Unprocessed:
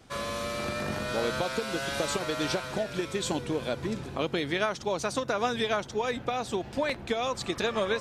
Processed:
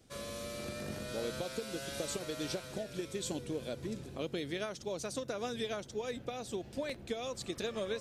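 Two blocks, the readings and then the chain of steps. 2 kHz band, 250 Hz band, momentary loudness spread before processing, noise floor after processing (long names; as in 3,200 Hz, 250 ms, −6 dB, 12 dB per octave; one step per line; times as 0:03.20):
−12.5 dB, −7.5 dB, 4 LU, −51 dBFS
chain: drawn EQ curve 550 Hz 0 dB, 910 Hz −9 dB, 11,000 Hz +5 dB
level −7.5 dB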